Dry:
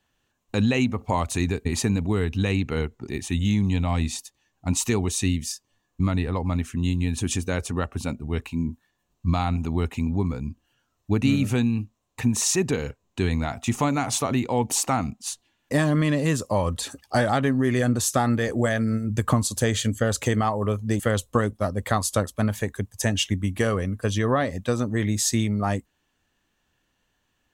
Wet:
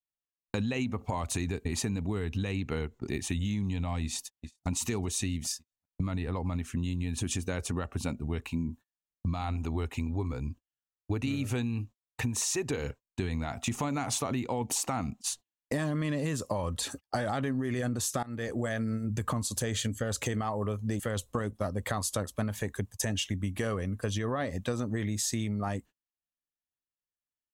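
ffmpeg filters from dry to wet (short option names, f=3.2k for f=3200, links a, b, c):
-filter_complex "[0:a]asplit=2[a][b];[b]afade=t=in:st=4.03:d=0.01,afade=t=out:st=4.68:d=0.01,aecho=0:1:390|780|1170|1560:0.211349|0.095107|0.0427982|0.0192592[c];[a][c]amix=inputs=2:normalize=0,asettb=1/sr,asplit=3[d][e][f];[d]atrim=end=9.414[g];[e]atrim=start=9.41:end=12.85,asetpts=PTS-STARTPTS,afade=t=in:d=0.004:c=qsin,afade=t=out:st=3.436:d=0.004:c=qsin,equalizer=f=190:t=o:w=0.37:g=-13[h];[f]atrim=start=12.846[i];[g][h]acrossfade=d=0.004:c1=hsin:c2=qsin[j];[j][i]acrossfade=d=0.004:c1=qsin:c2=hsin,asplit=2[k][l];[k]atrim=end=18.23,asetpts=PTS-STARTPTS,afade=t=out:st=18.226:d=0.004:c=hsin:silence=0.0707946[m];[l]atrim=start=18.23,asetpts=PTS-STARTPTS,afade=t=in:d=0.7:silence=0.0707946[n];[m][n]concat=n=2:v=0:a=1,agate=range=-34dB:threshold=-40dB:ratio=16:detection=peak,alimiter=limit=-15dB:level=0:latency=1:release=12,acompressor=threshold=-28dB:ratio=6"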